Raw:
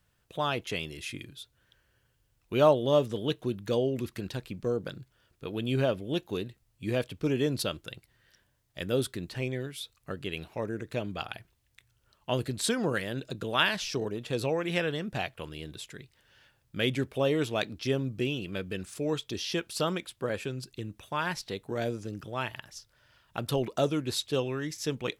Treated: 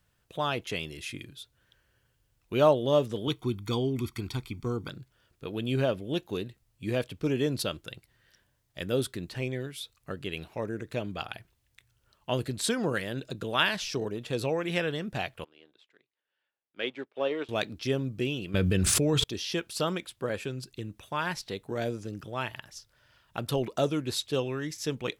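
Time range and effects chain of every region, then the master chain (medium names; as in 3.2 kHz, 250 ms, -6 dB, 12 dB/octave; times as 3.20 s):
3.27–4.89 s: peaking EQ 180 Hz -12 dB 0.33 oct + comb 0.9 ms, depth 92%
15.44–17.49 s: companding laws mixed up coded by A + three-band isolator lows -24 dB, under 270 Hz, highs -24 dB, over 4.3 kHz + upward expansion, over -50 dBFS
18.54–19.24 s: peaking EQ 63 Hz +11 dB 2.9 oct + level flattener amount 100%
whole clip: none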